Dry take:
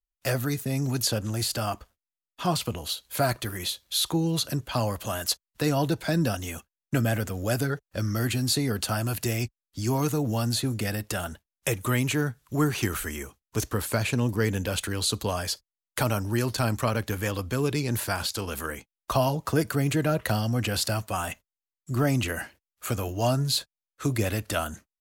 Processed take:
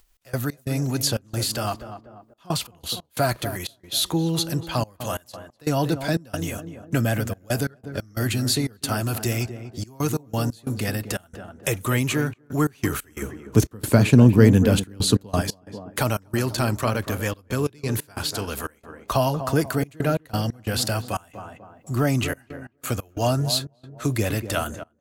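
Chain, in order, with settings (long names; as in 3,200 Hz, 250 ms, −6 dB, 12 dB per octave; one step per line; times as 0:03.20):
upward compression, threshold −43 dBFS
0:13.22–0:15.42: parametric band 190 Hz +12 dB 2.9 octaves
tape delay 245 ms, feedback 52%, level −8.5 dB, low-pass 1,000 Hz
gate pattern "x.x.xxx.xxxxxx." 90 BPM −24 dB
level +2.5 dB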